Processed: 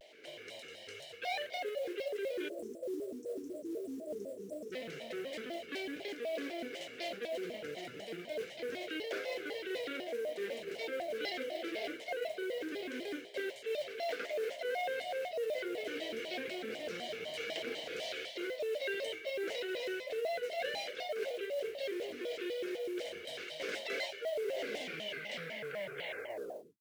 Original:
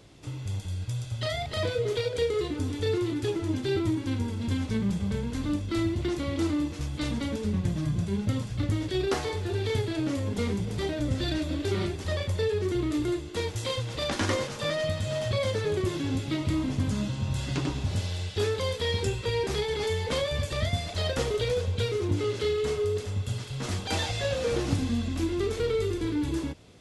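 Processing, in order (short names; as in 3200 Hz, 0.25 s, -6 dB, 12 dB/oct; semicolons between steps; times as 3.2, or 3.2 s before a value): tape stop at the end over 2.29 s; in parallel at 0 dB: limiter -22.5 dBFS, peak gain reduction 9.5 dB; on the sum: vowel filter e; dynamic EQ 590 Hz, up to +5 dB, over -48 dBFS, Q 6.6; spectral delete 2.48–4.72, 600–6200 Hz; reverse; compressor 5:1, threshold -39 dBFS, peak gain reduction 16 dB; reverse; tilt +2.5 dB/oct; modulation noise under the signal 25 dB; HPF 230 Hz 12 dB/oct; shaped vibrato square 4 Hz, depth 250 cents; gain +5 dB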